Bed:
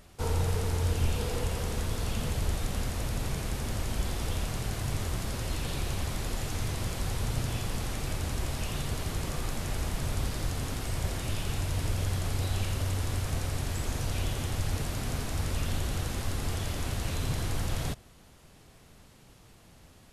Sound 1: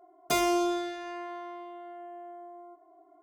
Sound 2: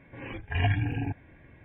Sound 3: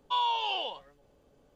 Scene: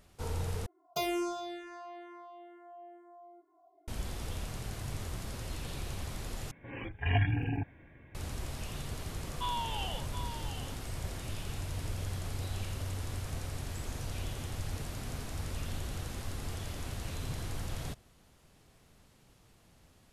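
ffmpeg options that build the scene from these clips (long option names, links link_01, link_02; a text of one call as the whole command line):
ffmpeg -i bed.wav -i cue0.wav -i cue1.wav -i cue2.wav -filter_complex "[0:a]volume=-7dB[link_01];[1:a]asplit=2[link_02][link_03];[link_03]afreqshift=-2.2[link_04];[link_02][link_04]amix=inputs=2:normalize=1[link_05];[3:a]aecho=1:1:724:0.355[link_06];[link_01]asplit=3[link_07][link_08][link_09];[link_07]atrim=end=0.664[link_10];[link_05]atrim=end=3.22,asetpts=PTS-STARTPTS,volume=-4.5dB[link_11];[link_08]atrim=start=3.876:end=6.514[link_12];[2:a]atrim=end=1.64,asetpts=PTS-STARTPTS,volume=-2.5dB[link_13];[link_09]atrim=start=8.146[link_14];[link_06]atrim=end=1.55,asetpts=PTS-STARTPTS,volume=-7.5dB,afade=type=in:duration=0.004:curve=hsin,afade=type=out:start_time=1.546:duration=0.004:curve=hsin,adelay=410130S[link_15];[link_10][link_11]acrossfade=duration=0.004:curve1=hsin:curve2=hsin[link_16];[link_16][link_12]acrossfade=duration=0.004:curve1=hsin:curve2=hsin[link_17];[link_17][link_13]acrossfade=duration=0.004:curve1=hsin:curve2=hsin[link_18];[link_18][link_14]acrossfade=duration=0.004:curve1=hsin:curve2=hsin[link_19];[link_19][link_15]amix=inputs=2:normalize=0" out.wav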